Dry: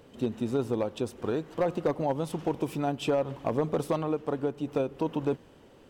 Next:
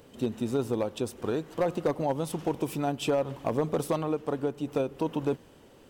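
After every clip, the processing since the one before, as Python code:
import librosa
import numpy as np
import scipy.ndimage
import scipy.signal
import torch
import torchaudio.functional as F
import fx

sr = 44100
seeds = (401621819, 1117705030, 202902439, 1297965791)

y = fx.high_shelf(x, sr, hz=6400.0, db=8.5)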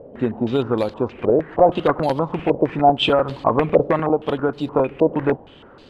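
y = np.repeat(scipy.signal.resample_poly(x, 1, 4), 4)[:len(x)]
y = fx.buffer_crackle(y, sr, first_s=0.89, period_s=0.1, block=128, kind='repeat')
y = fx.filter_held_lowpass(y, sr, hz=6.4, low_hz=590.0, high_hz=4300.0)
y = y * 10.0 ** (8.0 / 20.0)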